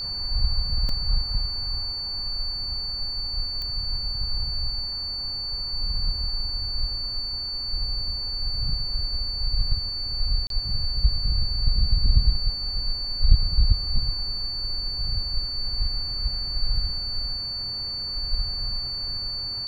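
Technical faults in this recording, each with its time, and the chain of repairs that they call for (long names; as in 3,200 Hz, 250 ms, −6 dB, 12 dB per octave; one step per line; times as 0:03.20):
whistle 4,500 Hz −28 dBFS
0:00.89: drop-out 2.6 ms
0:03.62: click −19 dBFS
0:10.47–0:10.50: drop-out 32 ms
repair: click removal
notch filter 4,500 Hz, Q 30
repair the gap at 0:00.89, 2.6 ms
repair the gap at 0:10.47, 32 ms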